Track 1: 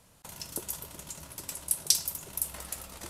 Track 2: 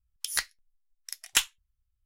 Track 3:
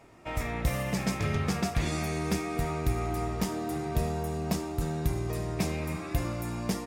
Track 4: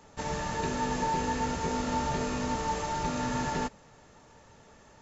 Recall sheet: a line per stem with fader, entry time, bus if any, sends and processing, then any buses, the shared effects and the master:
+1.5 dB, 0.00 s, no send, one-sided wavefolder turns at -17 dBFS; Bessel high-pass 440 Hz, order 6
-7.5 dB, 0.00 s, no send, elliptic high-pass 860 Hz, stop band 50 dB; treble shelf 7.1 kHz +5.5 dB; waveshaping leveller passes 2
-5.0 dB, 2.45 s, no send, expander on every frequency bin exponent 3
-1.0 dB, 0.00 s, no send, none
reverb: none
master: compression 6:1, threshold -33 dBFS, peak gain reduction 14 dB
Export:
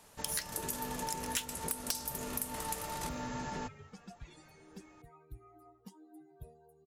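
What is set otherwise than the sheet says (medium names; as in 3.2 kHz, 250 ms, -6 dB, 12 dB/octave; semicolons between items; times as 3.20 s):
stem 3 -5.0 dB -> -16.5 dB; stem 4 -1.0 dB -> -8.5 dB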